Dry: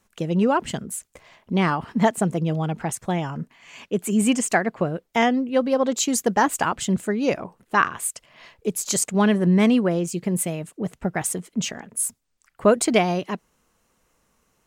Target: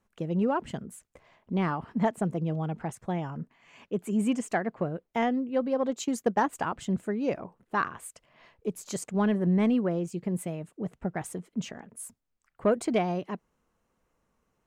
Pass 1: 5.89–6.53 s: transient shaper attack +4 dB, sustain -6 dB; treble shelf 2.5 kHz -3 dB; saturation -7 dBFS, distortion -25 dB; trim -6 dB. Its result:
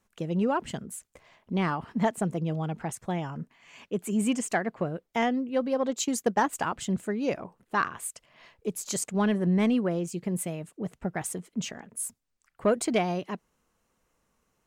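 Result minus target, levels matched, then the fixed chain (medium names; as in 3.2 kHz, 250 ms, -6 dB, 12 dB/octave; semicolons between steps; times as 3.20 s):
4 kHz band +5.0 dB
5.89–6.53 s: transient shaper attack +4 dB, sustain -6 dB; treble shelf 2.5 kHz -11.5 dB; saturation -7 dBFS, distortion -26 dB; trim -6 dB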